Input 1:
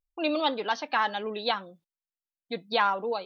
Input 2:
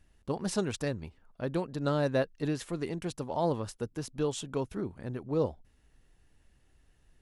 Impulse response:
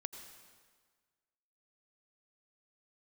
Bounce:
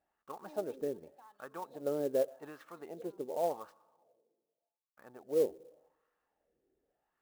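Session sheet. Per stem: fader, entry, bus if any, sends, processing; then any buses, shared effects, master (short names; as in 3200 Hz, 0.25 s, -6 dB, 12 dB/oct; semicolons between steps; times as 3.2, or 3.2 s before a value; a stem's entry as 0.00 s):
0.0 dB, 0.25 s, no send, band shelf 1300 Hz -15 dB 2.7 oct; auto duck -13 dB, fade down 0.95 s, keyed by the second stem
+1.5 dB, 0.00 s, muted 3.79–4.97, send -11 dB, notch 1000 Hz, Q 8.4; de-esser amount 85%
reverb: on, RT60 1.6 s, pre-delay 78 ms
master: bell 100 Hz -9.5 dB 0.58 oct; wah 0.86 Hz 390–1200 Hz, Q 3.7; clock jitter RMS 0.023 ms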